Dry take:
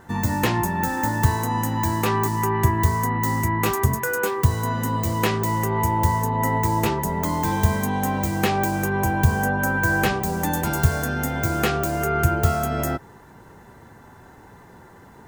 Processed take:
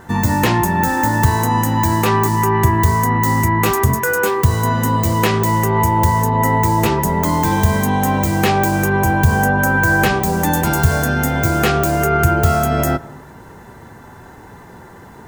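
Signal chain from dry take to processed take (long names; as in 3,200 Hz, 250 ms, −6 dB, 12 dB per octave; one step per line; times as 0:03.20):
hum removal 276.5 Hz, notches 22
in parallel at +3 dB: brickwall limiter −14.5 dBFS, peak gain reduction 9.5 dB
on the sum: convolution reverb RT60 1.0 s, pre-delay 80 ms, DRR 20 dB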